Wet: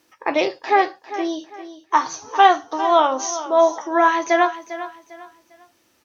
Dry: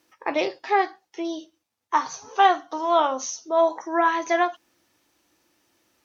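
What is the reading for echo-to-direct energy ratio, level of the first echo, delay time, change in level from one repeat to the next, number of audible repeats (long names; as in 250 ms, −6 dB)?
−13.0 dB, −13.5 dB, 400 ms, −10.0 dB, 3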